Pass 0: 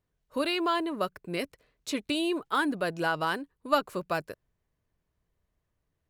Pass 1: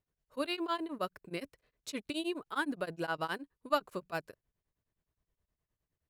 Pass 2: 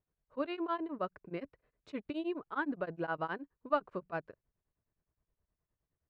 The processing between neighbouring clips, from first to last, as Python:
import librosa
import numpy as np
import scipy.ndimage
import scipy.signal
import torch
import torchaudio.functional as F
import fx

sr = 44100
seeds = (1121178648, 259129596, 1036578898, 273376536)

y1 = x * np.abs(np.cos(np.pi * 9.6 * np.arange(len(x)) / sr))
y1 = y1 * librosa.db_to_amplitude(-4.5)
y2 = scipy.signal.sosfilt(scipy.signal.butter(2, 1700.0, 'lowpass', fs=sr, output='sos'), y1)